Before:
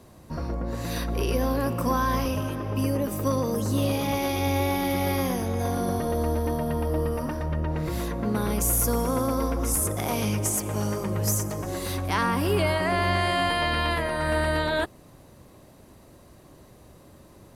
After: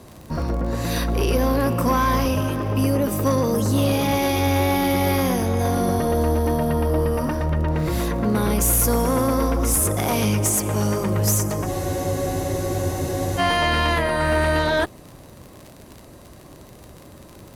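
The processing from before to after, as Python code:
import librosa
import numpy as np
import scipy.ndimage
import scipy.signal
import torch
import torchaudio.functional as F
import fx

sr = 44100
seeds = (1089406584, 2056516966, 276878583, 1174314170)

y = fx.dmg_crackle(x, sr, seeds[0], per_s=47.0, level_db=-38.0)
y = fx.cheby_harmonics(y, sr, harmonics=(5,), levels_db=(-20,), full_scale_db=-12.0)
y = fx.spec_freeze(y, sr, seeds[1], at_s=11.71, hold_s=1.67)
y = y * 10.0 ** (3.5 / 20.0)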